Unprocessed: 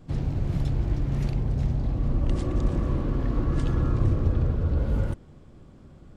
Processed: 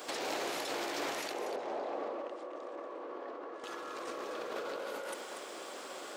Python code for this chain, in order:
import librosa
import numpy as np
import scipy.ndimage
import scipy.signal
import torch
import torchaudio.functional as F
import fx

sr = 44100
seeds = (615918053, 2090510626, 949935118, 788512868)

y = scipy.signal.sosfilt(scipy.signal.butter(4, 420.0, 'highpass', fs=sr, output='sos'), x)
y = fx.tilt_eq(y, sr, slope=2.5)
y = fx.over_compress(y, sr, threshold_db=-50.0, ratio=-1.0)
y = fx.bandpass_q(y, sr, hz=530.0, q=0.81, at=(1.32, 3.64))
y = y + 10.0 ** (-8.5 / 20.0) * np.pad(y, (int(238 * sr / 1000.0), 0))[:len(y)]
y = y * 10.0 ** (10.0 / 20.0)